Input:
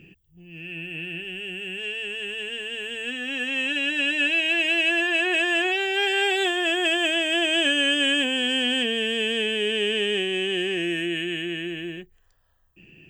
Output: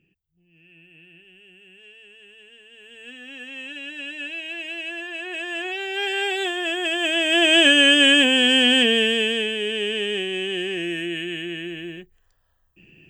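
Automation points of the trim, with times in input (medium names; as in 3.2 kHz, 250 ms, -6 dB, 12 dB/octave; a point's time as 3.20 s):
2.69 s -17 dB
3.10 s -10 dB
5.18 s -10 dB
6.08 s -2 dB
6.90 s -2 dB
7.52 s +7 dB
8.96 s +7 dB
9.56 s -1 dB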